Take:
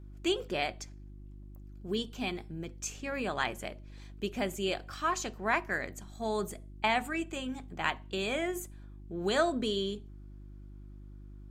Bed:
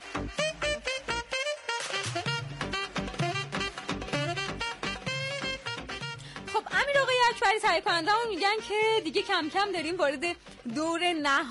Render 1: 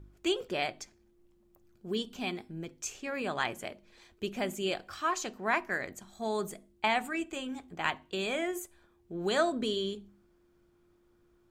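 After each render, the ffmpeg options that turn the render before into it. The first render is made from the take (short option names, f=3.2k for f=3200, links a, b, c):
-af "bandreject=f=50:t=h:w=4,bandreject=f=100:t=h:w=4,bandreject=f=150:t=h:w=4,bandreject=f=200:t=h:w=4,bandreject=f=250:t=h:w=4,bandreject=f=300:t=h:w=4"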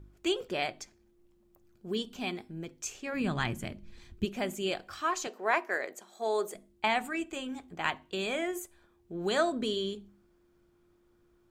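-filter_complex "[0:a]asplit=3[a][b][c];[a]afade=t=out:st=3.13:d=0.02[d];[b]asubboost=boost=9:cutoff=200,afade=t=in:st=3.13:d=0.02,afade=t=out:st=4.24:d=0.02[e];[c]afade=t=in:st=4.24:d=0.02[f];[d][e][f]amix=inputs=3:normalize=0,asettb=1/sr,asplit=3[g][h][i];[g]atrim=end=5.274[j];[h]atrim=start=5.27:end=6.55,asetpts=PTS-STARTPTS,afade=t=in:d=0.004:c=qsin,afade=t=out:st=1.276:d=0.004:c=qsin,highpass=f=440:t=q:w=1.6[k];[i]atrim=start=6.546[l];[j][k]acrossfade=d=0.004:c1=hsin:c2=qsin[m];[m][l]acrossfade=d=0.004:c1=qsin:c2=hsin"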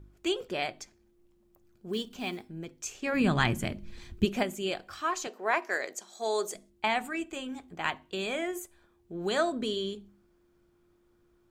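-filter_complex "[0:a]asettb=1/sr,asplit=3[a][b][c];[a]atrim=end=1.934[d];[b]atrim=start=1.93:end=2.49,asetpts=PTS-STARTPTS,afade=t=in:d=0.004:c=qsin,afade=t=out:st=0.556:d=0.004:c=qsin,acrusher=bits=6:mode=log:mix=0:aa=0.000001[e];[c]atrim=start=2.486[f];[d][e]acrossfade=d=0.004:c1=hsin:c2=qsin[g];[g][f]acrossfade=d=0.004:c1=qsin:c2=hsin,asettb=1/sr,asplit=3[h][i][j];[h]atrim=end=3.024[k];[i]atrim=start=3.02:end=4.43,asetpts=PTS-STARTPTS,afade=t=in:d=0.004:c=qsin,afade=t=out:st=1.406:d=0.004:c=qsin,acontrast=47[l];[j]atrim=start=4.426[m];[k][l]acrossfade=d=0.004:c1=hsin:c2=qsin[n];[n][m]acrossfade=d=0.004:c1=qsin:c2=hsin,asettb=1/sr,asplit=3[o][p][q];[o]atrim=end=5.624[r];[p]atrim=start=5.62:end=6.7,asetpts=PTS-STARTPTS,afade=t=in:d=0.004:c=qsin,afade=t=out:st=1.076:d=0.004:c=qsin,equalizer=f=5.7k:w=0.93:g=11[s];[q]atrim=start=6.696[t];[r][s]acrossfade=d=0.004:c1=hsin:c2=qsin[u];[u][t]acrossfade=d=0.004:c1=qsin:c2=hsin"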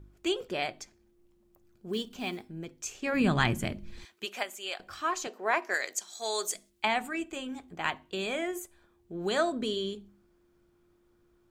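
-filter_complex "[0:a]asettb=1/sr,asplit=3[a][b][c];[a]atrim=end=4.054[d];[b]atrim=start=4.05:end=4.8,asetpts=PTS-STARTPTS,afade=t=in:d=0.004:c=qsin,afade=t=out:st=0.746:d=0.004:c=qsin,highpass=800[e];[c]atrim=start=4.796[f];[d][e]acrossfade=d=0.004:c1=hsin:c2=qsin[g];[g][f]acrossfade=d=0.004:c1=qsin:c2=hsin,asettb=1/sr,asplit=3[h][i][j];[h]atrim=end=5.744[k];[i]atrim=start=5.74:end=6.85,asetpts=PTS-STARTPTS,afade=t=in:d=0.004:c=qsin,afade=t=out:st=1.106:d=0.004:c=qsin,tiltshelf=f=1.2k:g=-7[l];[j]atrim=start=6.846[m];[k][l]acrossfade=d=0.004:c1=hsin:c2=qsin[n];[n][m]acrossfade=d=0.004:c1=qsin:c2=hsin"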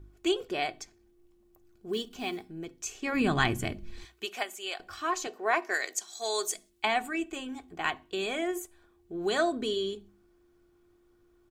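-af "aecho=1:1:2.7:0.4,bandreject=f=61.12:t=h:w=4,bandreject=f=122.24:t=h:w=4,bandreject=f=183.36:t=h:w=4"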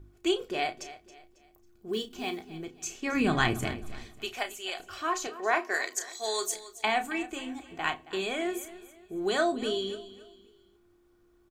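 -filter_complex "[0:a]asplit=2[a][b];[b]adelay=32,volume=-9.5dB[c];[a][c]amix=inputs=2:normalize=0,aecho=1:1:273|546|819:0.158|0.0571|0.0205"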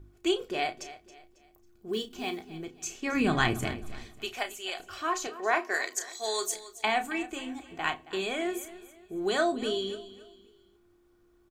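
-af anull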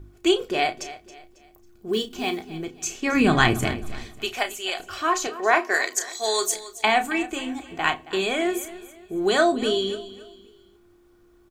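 -af "volume=7.5dB"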